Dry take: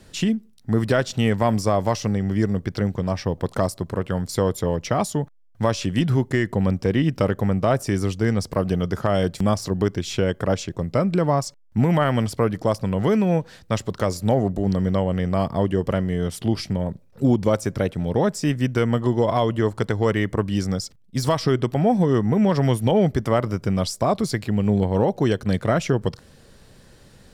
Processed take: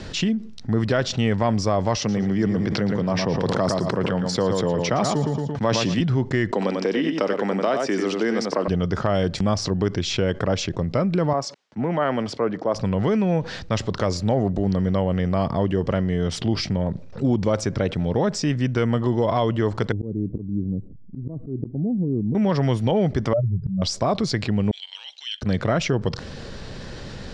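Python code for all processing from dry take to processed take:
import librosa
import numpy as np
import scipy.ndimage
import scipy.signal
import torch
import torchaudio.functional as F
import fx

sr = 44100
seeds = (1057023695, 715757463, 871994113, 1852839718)

y = fx.chain(x, sr, fx.highpass(hz=120.0, slope=24),
    fx.echo_feedback(ms=114, feedback_pct=25, wet_db=-10),
    fx.sustainer(db_per_s=38.0), at=(1.97, 6.0))
y = fx.chain(y, sr, fx.highpass(hz=250.0, slope=24),
    fx.echo_single(ms=93, db=-7.0),
    fx.band_squash(depth_pct=70), at=(6.52, 8.68))
y = fx.chain(y, sr, fx.highpass(hz=270.0, slope=12),
    fx.high_shelf(hz=2600.0, db=-10.5),
    fx.band_widen(depth_pct=70), at=(11.33, 12.76))
y = fx.chain(y, sr, fx.ladder_lowpass(hz=380.0, resonance_pct=30),
    fx.auto_swell(attack_ms=192.0), at=(19.92, 22.35))
y = fx.chain(y, sr, fx.spec_expand(power=3.7),
    fx.peak_eq(hz=120.0, db=6.0, octaves=0.35),
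    fx.auto_swell(attack_ms=156.0), at=(23.33, 23.82))
y = fx.chain(y, sr, fx.level_steps(step_db=11),
    fx.ladder_highpass(hz=2800.0, resonance_pct=70), at=(24.71, 25.42))
y = scipy.signal.sosfilt(scipy.signal.butter(4, 6000.0, 'lowpass', fs=sr, output='sos'), y)
y = fx.env_flatten(y, sr, amount_pct=50)
y = y * librosa.db_to_amplitude(-3.0)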